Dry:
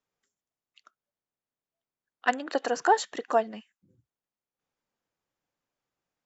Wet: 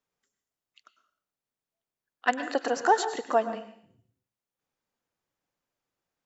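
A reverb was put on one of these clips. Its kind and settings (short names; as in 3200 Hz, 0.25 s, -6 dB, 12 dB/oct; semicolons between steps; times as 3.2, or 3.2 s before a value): plate-style reverb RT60 0.56 s, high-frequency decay 1×, pre-delay 90 ms, DRR 10 dB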